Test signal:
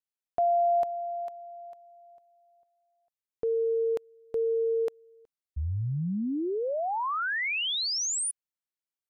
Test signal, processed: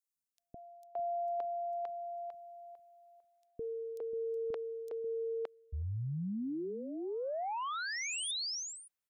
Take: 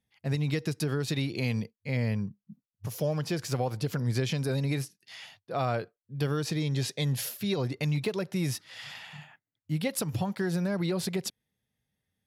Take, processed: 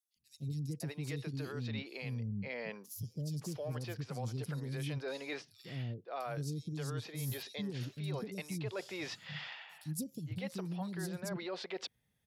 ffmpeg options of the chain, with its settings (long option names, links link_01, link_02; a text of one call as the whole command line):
ffmpeg -i in.wav -filter_complex "[0:a]acrossover=split=350|4700[link_01][link_02][link_03];[link_01]adelay=160[link_04];[link_02]adelay=570[link_05];[link_04][link_05][link_03]amix=inputs=3:normalize=0,areverse,acompressor=threshold=-40dB:ratio=5:attack=11:release=620:knee=6:detection=rms,areverse,volume=3.5dB" out.wav